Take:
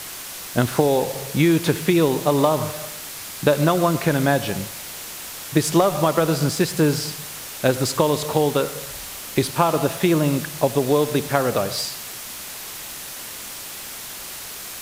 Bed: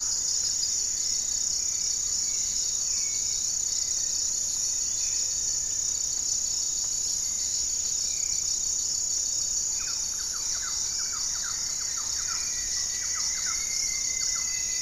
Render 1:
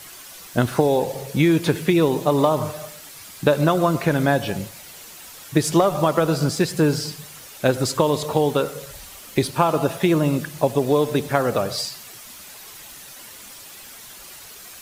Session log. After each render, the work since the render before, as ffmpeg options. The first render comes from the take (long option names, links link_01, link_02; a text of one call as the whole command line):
ffmpeg -i in.wav -af "afftdn=noise_reduction=9:noise_floor=-35" out.wav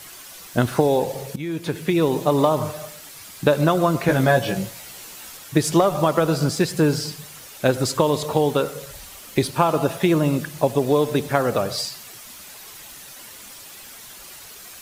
ffmpeg -i in.wav -filter_complex "[0:a]asettb=1/sr,asplit=3[link_01][link_02][link_03];[link_01]atrim=end=4.074[link_04];[link_02]atrim=start=4.07:end=5.37,asetpts=PTS-STARTPTS,afade=type=in:duration=0.004:curve=qsin,afade=type=out:start_time=1.296:duration=0.004:curve=qsin,asplit=2[link_05][link_06];[link_06]adelay=16,volume=-2.5dB[link_07];[link_05][link_07]amix=inputs=2:normalize=0,atrim=end_sample=57330[link_08];[link_03]atrim=start=5.366[link_09];[link_04][link_08]acrossfade=duration=0.004:curve1=hsin:curve2=qsin[link_10];[link_10][link_09]acrossfade=duration=0.004:curve1=qsin:curve2=hsin,asplit=2[link_11][link_12];[link_11]atrim=end=1.36,asetpts=PTS-STARTPTS,afade=type=out:start_time=1.356:duration=0.004:curve=hsin:silence=0.141254[link_13];[link_12]atrim=start=1.36,asetpts=PTS-STARTPTS,afade=type=in:duration=0.8:silence=0.141254[link_14];[link_13][link_14]concat=n=2:v=0:a=1" out.wav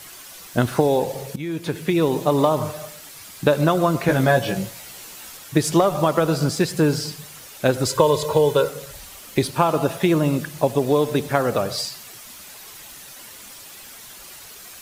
ffmpeg -i in.wav -filter_complex "[0:a]asettb=1/sr,asplit=3[link_01][link_02][link_03];[link_01]atrim=end=7.864[link_04];[link_02]atrim=start=7.86:end=8.69,asetpts=PTS-STARTPTS,afade=type=in:duration=0.004:curve=qsin,afade=type=out:start_time=0.826:duration=0.004:curve=qsin,aecho=1:1:2:0.65,atrim=end_sample=36603[link_05];[link_03]atrim=start=8.686[link_06];[link_04][link_05]acrossfade=duration=0.004:curve1=hsin:curve2=qsin[link_07];[link_07][link_06]acrossfade=duration=0.004:curve1=qsin:curve2=hsin" out.wav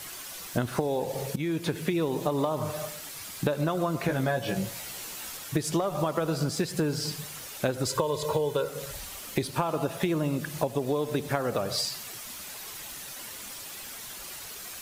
ffmpeg -i in.wav -af "acompressor=threshold=-25dB:ratio=5" out.wav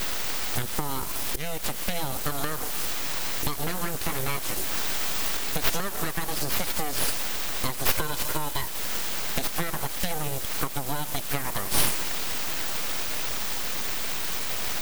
ffmpeg -i in.wav -af "crystalizer=i=4:c=0,aeval=exprs='abs(val(0))':channel_layout=same" out.wav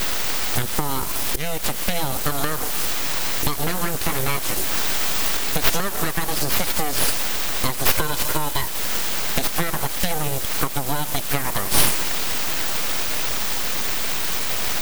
ffmpeg -i in.wav -af "volume=6dB,alimiter=limit=-1dB:level=0:latency=1" out.wav